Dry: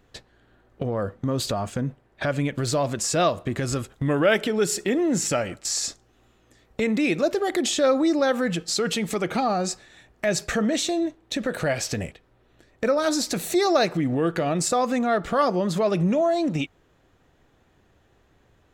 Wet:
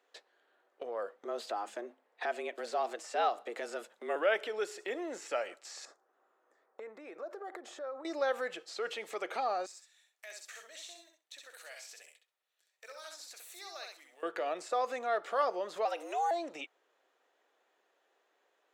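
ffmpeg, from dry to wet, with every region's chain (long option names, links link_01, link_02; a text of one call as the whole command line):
ffmpeg -i in.wav -filter_complex "[0:a]asettb=1/sr,asplit=3[link_01][link_02][link_03];[link_01]atrim=end=1.254[link_04];[link_02]atrim=start=1.25:end=4.16,asetpts=PTS-STARTPTS,afade=type=in:duration=0.004:curve=qsin,afade=type=out:start_time=2.906:duration=0.004:curve=qsin,bandreject=frequency=50:width_type=h:width=6,bandreject=frequency=100:width_type=h:width=6,bandreject=frequency=150:width_type=h:width=6,afreqshift=110[link_05];[link_03]atrim=start=4.156[link_06];[link_04][link_05]acrossfade=duration=0.004:curve1=hsin:curve2=qsin[link_07];[link_07][link_06]acrossfade=duration=0.004:curve1=qsin:curve2=hsin,asettb=1/sr,asplit=3[link_08][link_09][link_10];[link_08]atrim=end=5.854[link_11];[link_09]atrim=start=5.85:end=8.05,asetpts=PTS-STARTPTS,afade=type=in:duration=0.004:curve=qsin,afade=type=out:start_time=2.196:duration=0.004:curve=qsin,highshelf=frequency=2000:width_type=q:width=1.5:gain=-12.5,acompressor=threshold=-28dB:ratio=8:attack=3.2:release=140:knee=1:detection=peak[link_12];[link_10]atrim=start=8.046[link_13];[link_11][link_12]acrossfade=duration=0.004:curve1=hsin:curve2=qsin[link_14];[link_14][link_13]acrossfade=duration=0.004:curve1=qsin:curve2=hsin,asettb=1/sr,asplit=3[link_15][link_16][link_17];[link_15]atrim=end=9.664[link_18];[link_16]atrim=start=9.66:end=14.23,asetpts=PTS-STARTPTS,afade=type=in:duration=0.004:curve=qsin,afade=type=out:start_time=4.566:duration=0.004:curve=qsin,aderivative,acrusher=bits=6:mode=log:mix=0:aa=0.000001,aecho=1:1:65|130|195:0.596|0.0893|0.0134,atrim=end_sample=201537[link_19];[link_17]atrim=start=14.226[link_20];[link_18][link_19]acrossfade=duration=0.004:curve1=hsin:curve2=qsin[link_21];[link_21][link_20]acrossfade=duration=0.004:curve1=qsin:curve2=hsin,asettb=1/sr,asplit=3[link_22][link_23][link_24];[link_22]atrim=end=15.854[link_25];[link_23]atrim=start=15.85:end=16.31,asetpts=PTS-STARTPTS,afade=type=in:duration=0.004:curve=qsin,afade=type=out:start_time=0.456:duration=0.004:curve=qsin,acrossover=split=3500[link_26][link_27];[link_27]acompressor=threshold=-51dB:ratio=4:attack=1:release=60[link_28];[link_26][link_28]amix=inputs=2:normalize=0,aemphasis=mode=production:type=riaa,afreqshift=140[link_29];[link_24]atrim=start=16.306[link_30];[link_25][link_29]acrossfade=duration=0.004:curve1=hsin:curve2=qsin[link_31];[link_31][link_30]acrossfade=duration=0.004:curve1=qsin:curve2=hsin,highpass=frequency=440:width=0.5412,highpass=frequency=440:width=1.3066,highshelf=frequency=9900:gain=-5.5,acrossover=split=3100[link_32][link_33];[link_33]acompressor=threshold=-41dB:ratio=4:attack=1:release=60[link_34];[link_32][link_34]amix=inputs=2:normalize=0,volume=-8.5dB" out.wav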